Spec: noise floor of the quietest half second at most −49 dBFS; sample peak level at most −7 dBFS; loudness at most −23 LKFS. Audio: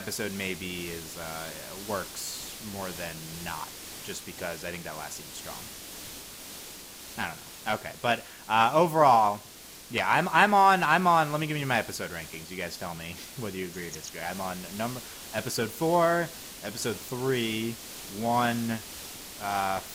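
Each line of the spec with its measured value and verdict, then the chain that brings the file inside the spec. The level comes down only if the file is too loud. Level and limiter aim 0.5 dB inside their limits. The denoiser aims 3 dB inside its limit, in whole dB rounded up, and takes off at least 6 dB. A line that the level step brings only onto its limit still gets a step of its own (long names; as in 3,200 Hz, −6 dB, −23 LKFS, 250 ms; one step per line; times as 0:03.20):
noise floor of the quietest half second −47 dBFS: out of spec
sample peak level −6.0 dBFS: out of spec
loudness −28.5 LKFS: in spec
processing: broadband denoise 6 dB, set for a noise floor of −47 dBFS
brickwall limiter −7.5 dBFS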